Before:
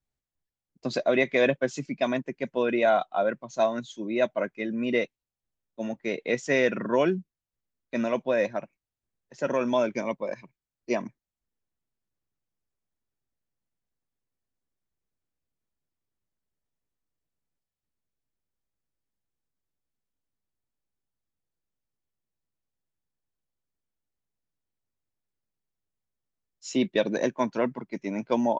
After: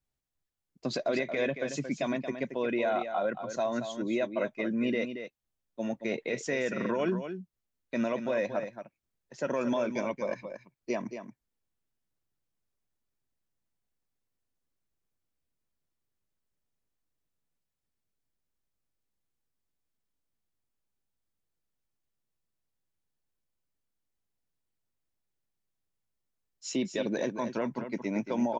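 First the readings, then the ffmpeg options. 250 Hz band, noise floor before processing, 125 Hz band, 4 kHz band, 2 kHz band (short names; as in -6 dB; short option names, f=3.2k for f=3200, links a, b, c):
-2.5 dB, under -85 dBFS, -2.5 dB, -4.5 dB, -5.5 dB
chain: -filter_complex "[0:a]alimiter=limit=-21dB:level=0:latency=1:release=95,asplit=2[a][b];[b]aecho=0:1:227:0.355[c];[a][c]amix=inputs=2:normalize=0"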